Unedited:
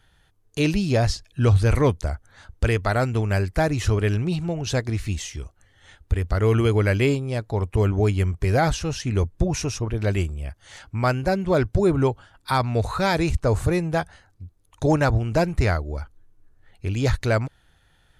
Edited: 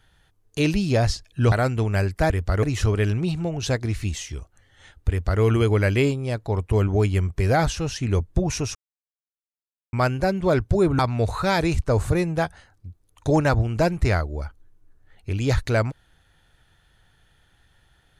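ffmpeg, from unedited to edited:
-filter_complex "[0:a]asplit=7[s0][s1][s2][s3][s4][s5][s6];[s0]atrim=end=1.522[s7];[s1]atrim=start=2.888:end=3.672[s8];[s2]atrim=start=6.128:end=6.462[s9];[s3]atrim=start=3.668:end=9.79,asetpts=PTS-STARTPTS,afade=t=out:st=6.118:d=0.004:c=hsin[s10];[s4]atrim=start=9.79:end=10.97,asetpts=PTS-STARTPTS,volume=0[s11];[s5]atrim=start=10.97:end=12.032,asetpts=PTS-STARTPTS,afade=t=in:d=0.004:c=hsin[s12];[s6]atrim=start=12.548[s13];[s7][s8]acrossfade=d=0.004:c1=hsin:c2=hsin[s14];[s14][s9]acrossfade=d=0.004:c1=hsin:c2=hsin[s15];[s10][s11][s12]concat=n=3:v=0:a=1[s16];[s15][s16]acrossfade=d=0.004:c1=hsin:c2=hsin[s17];[s17][s13]acrossfade=d=0.004:c1=hsin:c2=hsin"

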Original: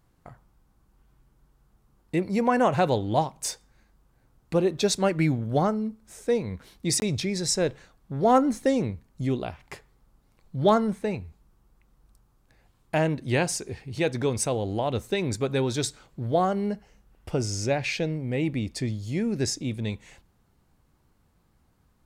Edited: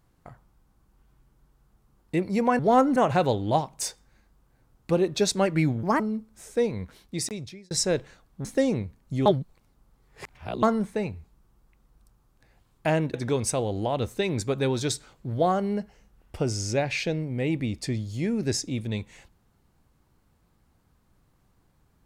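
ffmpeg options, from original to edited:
-filter_complex "[0:a]asplit=10[s0][s1][s2][s3][s4][s5][s6][s7][s8][s9];[s0]atrim=end=2.592[s10];[s1]atrim=start=8.158:end=8.532[s11];[s2]atrim=start=2.588:end=5.464[s12];[s3]atrim=start=5.46:end=5.71,asetpts=PTS-STARTPTS,asetrate=65709,aresample=44100,atrim=end_sample=7399,asetpts=PTS-STARTPTS[s13];[s4]atrim=start=5.706:end=7.42,asetpts=PTS-STARTPTS,afade=t=out:st=0.804:d=0.91[s14];[s5]atrim=start=7.42:end=8.162,asetpts=PTS-STARTPTS,afade=t=in:d=0.004:c=hsin[s15];[s6]atrim=start=8.528:end=9.342[s16];[s7]atrim=start=9.338:end=10.712,asetpts=PTS-STARTPTS,areverse[s17];[s8]atrim=start=10.708:end=13.222[s18];[s9]atrim=start=14.068[s19];[s10][s11]acrossfade=d=0.004:c1=hsin:c2=hsin[s20];[s20][s12]acrossfade=d=0.004:c1=hsin:c2=hsin[s21];[s21][s13]acrossfade=d=0.004:c1=hsin:c2=hsin[s22];[s14][s15]concat=n=2:v=0:a=1[s23];[s22][s23]acrossfade=d=0.004:c1=hsin:c2=hsin[s24];[s24][s16]acrossfade=d=0.004:c1=hsin:c2=hsin[s25];[s25][s17]acrossfade=d=0.004:c1=hsin:c2=hsin[s26];[s26][s18]acrossfade=d=0.004:c1=hsin:c2=hsin[s27];[s27][s19]acrossfade=d=0.004:c1=hsin:c2=hsin"

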